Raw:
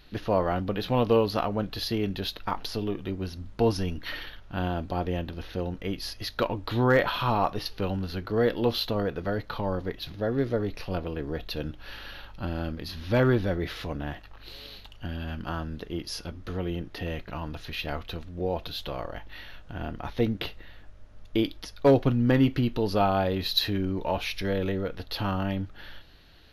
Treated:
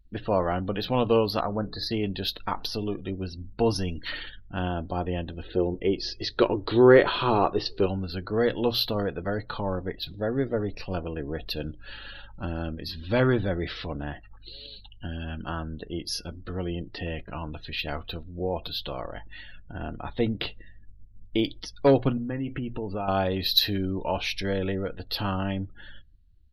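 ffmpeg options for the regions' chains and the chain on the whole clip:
-filter_complex "[0:a]asettb=1/sr,asplit=3[a][b][c];[a]atrim=end=1.404[d];[b]atrim=start=1.4:end=1.91,asetpts=PTS-STARTPTS,afade=t=in:d=0.004:c=qsin,afade=t=out:st=0.506:d=0.004:c=qsin,asuperstop=centerf=2900:order=12:qfactor=2.2,highshelf=f=5.9k:g=-9,bandreject=f=60:t=h:w=6,bandreject=f=120:t=h:w=6,bandreject=f=180:t=h:w=6,bandreject=f=240:t=h:w=6,bandreject=f=300:t=h:w=6,bandreject=f=360:t=h:w=6,bandreject=f=420:t=h:w=6[e];[c]atrim=start=1.906[f];[d][e]acrossfade=d=0.004:c1=hsin:c2=qsin[g];[g][f]acrossfade=d=0.004:c1=qsin:c2=hsin,asettb=1/sr,asplit=3[h][i][j];[h]atrim=end=5.454[k];[i]atrim=start=5.45:end=7.86,asetpts=PTS-STARTPTS,afade=t=in:d=0.004:c=qsin,afade=t=out:st=2.406:d=0.004:c=qsin,acrossover=split=7400[l][m];[m]acompressor=threshold=-58dB:ratio=4:attack=1:release=60[n];[l][n]amix=inputs=2:normalize=0,equalizer=f=380:w=2.4:g=13[o];[j]atrim=start=7.856[p];[k][o]acrossfade=d=0.004:c1=hsin:c2=qsin[q];[q][p]acrossfade=d=0.004:c1=qsin:c2=hsin,asettb=1/sr,asplit=3[r][s][t];[r]atrim=end=22.174[u];[s]atrim=start=22.17:end=23.08,asetpts=PTS-STARTPTS,afade=t=in:d=0.004:c=qsin,afade=t=out:st=0.906:d=0.004:c=qsin,lowpass=f=3k:w=0.5412,lowpass=f=3k:w=1.3066,acompressor=threshold=-27dB:ratio=6:attack=3.2:release=140:knee=1:detection=peak,acrusher=bits=8:mix=0:aa=0.5[v];[t]atrim=start=23.076[w];[u][v]acrossfade=d=0.004:c1=hsin:c2=qsin[x];[x][w]acrossfade=d=0.004:c1=qsin:c2=hsin,bandreject=f=60:t=h:w=6,bandreject=f=120:t=h:w=6,afftdn=nr=36:nf=-45,highshelf=f=3.6k:g=7"

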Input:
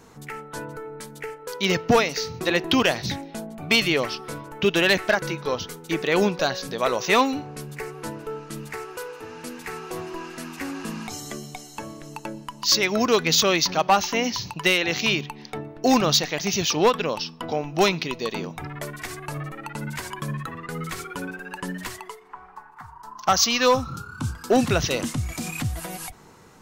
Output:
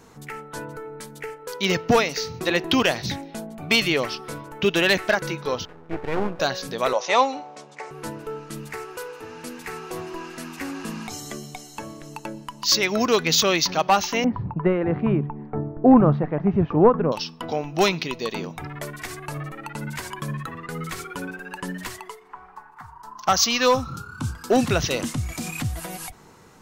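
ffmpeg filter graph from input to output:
-filter_complex "[0:a]asettb=1/sr,asplit=3[a][b][c];[a]atrim=end=5.654[d];[b]atrim=start=5.65:end=6.4,asetpts=PTS-STARTPTS,afade=t=in:d=0.004:c=qsin,afade=t=out:st=0.746:d=0.004:c=qsin,lowpass=f=1.7k:w=0.5412,lowpass=f=1.7k:w=1.3066,aeval=exprs='max(val(0),0)':c=same[e];[c]atrim=start=6.396[f];[d][e]acrossfade=d=0.004:c1=hsin:c2=qsin[g];[g][f]acrossfade=d=0.004:c1=qsin:c2=hsin,asettb=1/sr,asplit=3[h][i][j];[h]atrim=end=6.934[k];[i]atrim=start=6.93:end=7.91,asetpts=PTS-STARTPTS,afade=t=in:d=0.004:c=qsin,afade=t=out:st=0.976:d=0.004:c=qsin,aeval=exprs='sgn(val(0))*max(abs(val(0))-0.00178,0)':c=same,highpass=390,equalizer=f=400:t=q:w=4:g=-9,equalizer=f=570:t=q:w=4:g=8,equalizer=f=850:t=q:w=4:g=6,equalizer=f=1.6k:t=q:w=4:g=-6,equalizer=f=2.7k:t=q:w=4:g=-4,equalizer=f=4.6k:t=q:w=4:g=-4,lowpass=f=6.9k:w=0.5412,lowpass=f=6.9k:w=1.3066[l];[j]atrim=start=7.906[m];[k][l]acrossfade=d=0.004:c1=hsin:c2=qsin[n];[n][m]acrossfade=d=0.004:c1=qsin:c2=hsin,asettb=1/sr,asplit=3[o][p][q];[o]atrim=end=14.244[r];[p]atrim=start=14.24:end=17.12,asetpts=PTS-STARTPTS,afade=t=in:d=0.004:c=qsin,afade=t=out:st=2.876:d=0.004:c=qsin,lowpass=f=1.4k:w=0.5412,lowpass=f=1.4k:w=1.3066,lowshelf=f=330:g=11[s];[q]atrim=start=17.116[t];[r][s]acrossfade=d=0.004:c1=hsin:c2=qsin[u];[u][t]acrossfade=d=0.004:c1=qsin:c2=hsin"

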